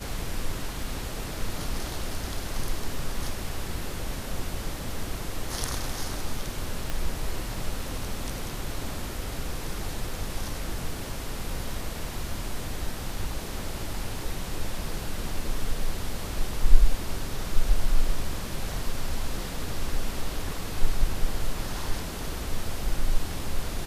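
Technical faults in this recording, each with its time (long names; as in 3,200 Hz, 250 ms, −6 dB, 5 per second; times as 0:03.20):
0:06.90: click −15 dBFS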